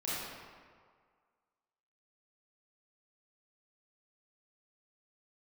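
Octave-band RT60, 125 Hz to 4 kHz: 1.6, 1.6, 1.8, 1.9, 1.5, 1.1 s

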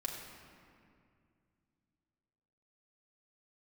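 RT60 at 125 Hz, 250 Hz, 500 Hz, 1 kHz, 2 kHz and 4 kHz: 3.4, 3.2, 2.5, 2.2, 2.0, 1.4 s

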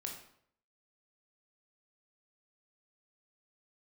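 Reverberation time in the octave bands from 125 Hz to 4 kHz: 0.70, 0.65, 0.65, 0.65, 0.55, 0.50 s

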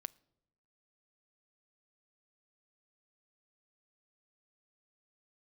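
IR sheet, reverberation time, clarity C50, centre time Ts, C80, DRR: 0.90 s, 25.5 dB, 2 ms, 28.0 dB, 20.0 dB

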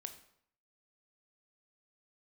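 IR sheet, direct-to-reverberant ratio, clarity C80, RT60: 7.0 dB, 14.0 dB, 0.65 s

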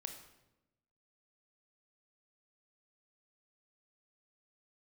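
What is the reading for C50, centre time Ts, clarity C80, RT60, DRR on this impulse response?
7.5 dB, 22 ms, 10.0 dB, 0.95 s, 5.0 dB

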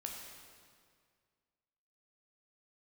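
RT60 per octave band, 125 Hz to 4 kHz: 2.3, 2.1, 2.1, 2.0, 1.8, 1.7 s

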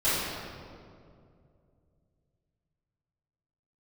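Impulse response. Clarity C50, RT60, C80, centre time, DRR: -3.0 dB, 2.4 s, 0.0 dB, 0.137 s, -15.5 dB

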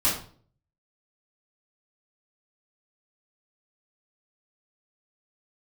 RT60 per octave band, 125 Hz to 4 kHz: 0.75, 0.60, 0.50, 0.45, 0.35, 0.35 s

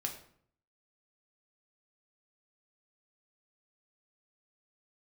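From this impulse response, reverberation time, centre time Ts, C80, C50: 0.60 s, 18 ms, 12.0 dB, 9.0 dB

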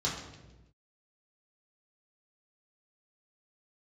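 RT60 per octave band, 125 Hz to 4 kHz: 1.4, 1.3, 1.2, 0.90, 0.90, 0.85 s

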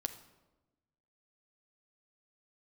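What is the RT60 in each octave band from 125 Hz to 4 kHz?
1.5, 1.4, 1.2, 1.0, 0.80, 0.70 s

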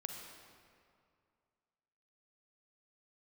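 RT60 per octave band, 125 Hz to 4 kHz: 2.4, 2.3, 2.3, 2.3, 1.9, 1.5 s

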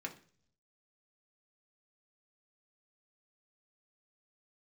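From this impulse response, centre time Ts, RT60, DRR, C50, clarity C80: 10 ms, 0.50 s, 0.5 dB, 13.5 dB, 18.0 dB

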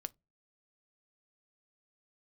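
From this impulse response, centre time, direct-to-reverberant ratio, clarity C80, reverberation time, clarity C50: 1 ms, 14.0 dB, 40.0 dB, 0.20 s, 30.0 dB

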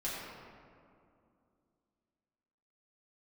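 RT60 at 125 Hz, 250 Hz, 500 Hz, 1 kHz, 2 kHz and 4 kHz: 2.8, 3.2, 2.6, 2.3, 1.7, 1.1 s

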